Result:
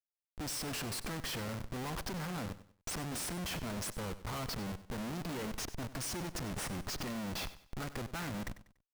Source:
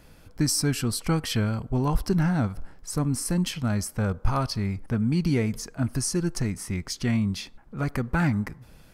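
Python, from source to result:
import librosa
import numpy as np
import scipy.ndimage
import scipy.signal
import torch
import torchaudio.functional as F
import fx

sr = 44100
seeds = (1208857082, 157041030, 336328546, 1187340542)

p1 = fx.highpass(x, sr, hz=440.0, slope=6)
p2 = fx.cheby_harmonics(p1, sr, harmonics=(6, 7), levels_db=(-24, -34), full_scale_db=-13.5)
p3 = fx.schmitt(p2, sr, flips_db=-39.5)
p4 = p3 + fx.echo_feedback(p3, sr, ms=96, feedback_pct=32, wet_db=-15.0, dry=0)
y = F.gain(torch.from_numpy(p4), -5.5).numpy()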